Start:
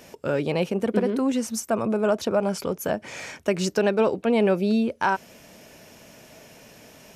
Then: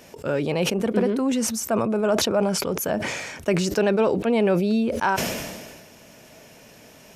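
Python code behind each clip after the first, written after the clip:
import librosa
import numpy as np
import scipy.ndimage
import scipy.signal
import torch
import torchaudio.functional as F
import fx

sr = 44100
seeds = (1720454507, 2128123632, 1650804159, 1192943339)

y = fx.sustainer(x, sr, db_per_s=36.0)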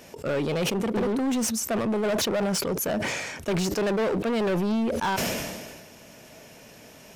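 y = np.clip(x, -10.0 ** (-22.5 / 20.0), 10.0 ** (-22.5 / 20.0))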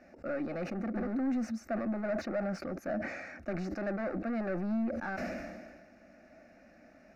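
y = fx.air_absorb(x, sr, metres=260.0)
y = fx.fixed_phaser(y, sr, hz=650.0, stages=8)
y = y * 10.0 ** (-5.0 / 20.0)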